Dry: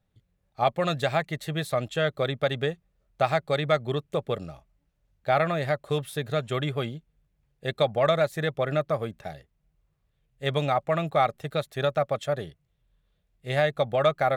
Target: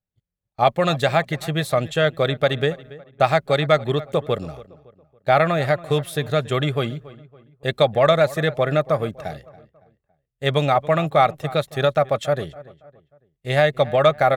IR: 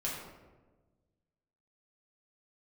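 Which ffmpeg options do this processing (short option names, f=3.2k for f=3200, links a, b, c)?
-filter_complex "[0:a]agate=range=-22dB:threshold=-53dB:ratio=16:detection=peak,asplit=2[a][b];[b]adelay=280,lowpass=f=2.4k:p=1,volume=-18.5dB,asplit=2[c][d];[d]adelay=280,lowpass=f=2.4k:p=1,volume=0.41,asplit=2[e][f];[f]adelay=280,lowpass=f=2.4k:p=1,volume=0.41[g];[a][c][e][g]amix=inputs=4:normalize=0,volume=6.5dB"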